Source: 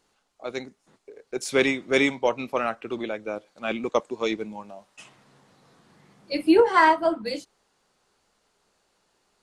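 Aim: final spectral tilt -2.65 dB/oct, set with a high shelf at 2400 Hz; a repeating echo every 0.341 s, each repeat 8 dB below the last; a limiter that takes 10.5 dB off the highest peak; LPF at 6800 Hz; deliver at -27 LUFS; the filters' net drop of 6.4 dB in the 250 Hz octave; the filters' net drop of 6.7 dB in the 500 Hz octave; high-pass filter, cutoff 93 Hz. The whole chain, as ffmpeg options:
-af "highpass=93,lowpass=6.8k,equalizer=f=250:t=o:g=-5.5,equalizer=f=500:t=o:g=-7,highshelf=f=2.4k:g=4.5,alimiter=limit=-16.5dB:level=0:latency=1,aecho=1:1:341|682|1023|1364|1705:0.398|0.159|0.0637|0.0255|0.0102,volume=3dB"

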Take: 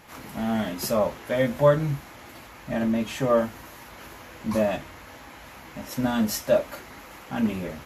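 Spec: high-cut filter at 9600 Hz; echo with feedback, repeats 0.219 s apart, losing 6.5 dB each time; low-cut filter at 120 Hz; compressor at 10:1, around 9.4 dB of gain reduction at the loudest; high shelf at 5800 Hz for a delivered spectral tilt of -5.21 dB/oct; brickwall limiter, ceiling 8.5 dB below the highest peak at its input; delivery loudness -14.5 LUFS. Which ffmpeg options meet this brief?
-af "highpass=120,lowpass=9.6k,highshelf=f=5.8k:g=-4,acompressor=threshold=-23dB:ratio=10,alimiter=limit=-23dB:level=0:latency=1,aecho=1:1:219|438|657|876|1095|1314:0.473|0.222|0.105|0.0491|0.0231|0.0109,volume=19dB"

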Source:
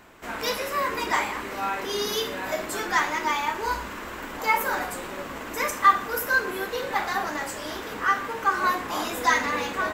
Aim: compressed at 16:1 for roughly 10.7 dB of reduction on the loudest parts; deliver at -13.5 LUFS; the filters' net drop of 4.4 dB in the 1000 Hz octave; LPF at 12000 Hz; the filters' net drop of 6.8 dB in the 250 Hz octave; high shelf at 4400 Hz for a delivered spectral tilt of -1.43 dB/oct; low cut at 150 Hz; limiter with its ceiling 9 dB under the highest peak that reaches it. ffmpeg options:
-af "highpass=150,lowpass=12k,equalizer=f=250:t=o:g=-8.5,equalizer=f=1k:t=o:g=-5.5,highshelf=f=4.4k:g=9,acompressor=threshold=-27dB:ratio=16,volume=20dB,alimiter=limit=-5dB:level=0:latency=1"

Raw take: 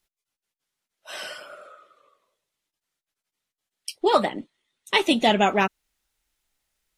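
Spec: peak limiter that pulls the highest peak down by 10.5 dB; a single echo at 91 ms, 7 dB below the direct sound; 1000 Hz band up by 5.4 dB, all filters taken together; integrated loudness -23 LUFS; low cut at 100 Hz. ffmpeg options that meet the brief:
-af "highpass=100,equalizer=f=1k:t=o:g=7,alimiter=limit=-12dB:level=0:latency=1,aecho=1:1:91:0.447,volume=1.5dB"

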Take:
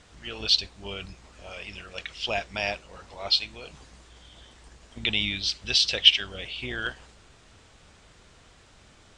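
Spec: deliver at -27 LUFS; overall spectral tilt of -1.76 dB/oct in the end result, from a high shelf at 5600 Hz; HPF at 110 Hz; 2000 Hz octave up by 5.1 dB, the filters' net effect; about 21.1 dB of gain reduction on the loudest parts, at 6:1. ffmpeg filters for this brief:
-af "highpass=110,equalizer=f=2k:t=o:g=6,highshelf=f=5.6k:g=5.5,acompressor=threshold=-31dB:ratio=6,volume=7.5dB"

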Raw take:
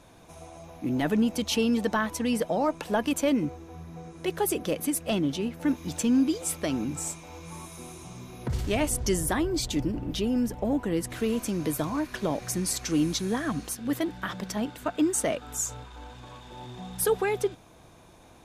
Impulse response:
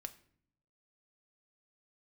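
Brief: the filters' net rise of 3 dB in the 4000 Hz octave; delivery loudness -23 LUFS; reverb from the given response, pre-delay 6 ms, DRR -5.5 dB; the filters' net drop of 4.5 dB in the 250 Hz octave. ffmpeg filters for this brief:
-filter_complex "[0:a]equalizer=f=250:t=o:g=-5.5,equalizer=f=4k:t=o:g=4,asplit=2[a][b];[1:a]atrim=start_sample=2205,adelay=6[c];[b][c]afir=irnorm=-1:irlink=0,volume=9.5dB[d];[a][d]amix=inputs=2:normalize=0,volume=0.5dB"

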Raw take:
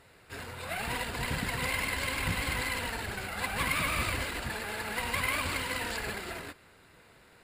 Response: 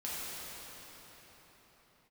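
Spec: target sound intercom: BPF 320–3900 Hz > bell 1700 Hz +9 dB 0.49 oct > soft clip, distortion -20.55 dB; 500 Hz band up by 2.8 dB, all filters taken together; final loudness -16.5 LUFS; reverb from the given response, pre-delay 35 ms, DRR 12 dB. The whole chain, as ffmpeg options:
-filter_complex "[0:a]equalizer=f=500:t=o:g=4,asplit=2[a][b];[1:a]atrim=start_sample=2205,adelay=35[c];[b][c]afir=irnorm=-1:irlink=0,volume=-16dB[d];[a][d]amix=inputs=2:normalize=0,highpass=320,lowpass=3.9k,equalizer=f=1.7k:t=o:w=0.49:g=9,asoftclip=threshold=-20.5dB,volume=13.5dB"

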